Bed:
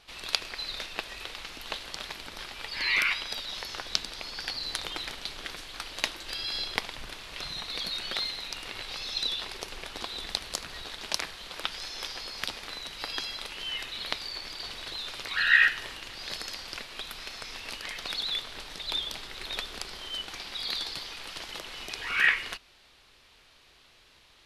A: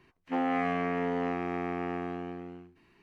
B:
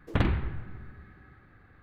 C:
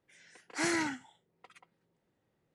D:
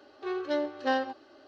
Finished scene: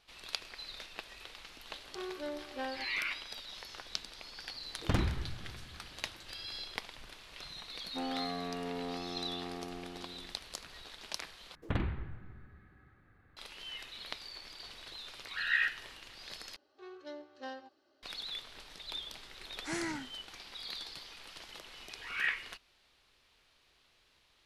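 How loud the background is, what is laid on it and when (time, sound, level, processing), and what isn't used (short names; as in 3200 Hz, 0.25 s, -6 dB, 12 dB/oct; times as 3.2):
bed -10 dB
1.72 add D -7 dB + compressor 1.5:1, threshold -35 dBFS
4.74 add B -5 dB + tracing distortion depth 0.22 ms
7.64 add A -8.5 dB + LPF 1500 Hz
11.55 replace with B -8 dB
16.56 replace with D -17 dB + high shelf 5100 Hz +10.5 dB
19.09 add C -7 dB + low shelf 160 Hz +9.5 dB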